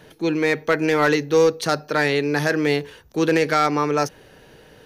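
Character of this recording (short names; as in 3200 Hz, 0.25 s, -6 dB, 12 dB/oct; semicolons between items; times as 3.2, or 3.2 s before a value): noise floor -50 dBFS; spectral tilt -4.0 dB/oct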